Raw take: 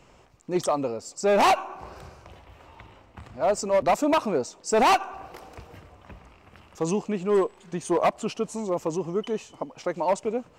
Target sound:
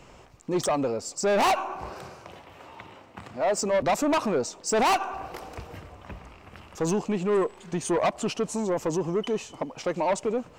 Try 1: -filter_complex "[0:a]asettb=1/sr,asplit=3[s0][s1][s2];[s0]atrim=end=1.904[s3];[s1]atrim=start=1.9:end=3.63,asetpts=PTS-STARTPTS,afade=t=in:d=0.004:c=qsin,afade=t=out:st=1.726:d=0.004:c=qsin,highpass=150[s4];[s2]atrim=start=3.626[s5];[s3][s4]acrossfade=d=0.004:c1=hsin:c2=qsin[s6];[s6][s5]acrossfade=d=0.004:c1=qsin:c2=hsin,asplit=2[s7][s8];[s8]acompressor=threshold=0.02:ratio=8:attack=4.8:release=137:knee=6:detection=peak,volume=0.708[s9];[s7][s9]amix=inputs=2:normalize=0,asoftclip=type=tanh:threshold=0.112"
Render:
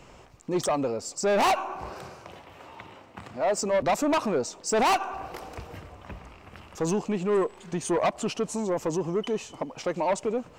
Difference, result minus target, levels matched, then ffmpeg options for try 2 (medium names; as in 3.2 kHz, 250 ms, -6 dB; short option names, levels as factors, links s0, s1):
compression: peak gain reduction +6 dB
-filter_complex "[0:a]asettb=1/sr,asplit=3[s0][s1][s2];[s0]atrim=end=1.904[s3];[s1]atrim=start=1.9:end=3.63,asetpts=PTS-STARTPTS,afade=t=in:d=0.004:c=qsin,afade=t=out:st=1.726:d=0.004:c=qsin,highpass=150[s4];[s2]atrim=start=3.626[s5];[s3][s4]acrossfade=d=0.004:c1=hsin:c2=qsin[s6];[s6][s5]acrossfade=d=0.004:c1=qsin:c2=hsin,asplit=2[s7][s8];[s8]acompressor=threshold=0.0447:ratio=8:attack=4.8:release=137:knee=6:detection=peak,volume=0.708[s9];[s7][s9]amix=inputs=2:normalize=0,asoftclip=type=tanh:threshold=0.112"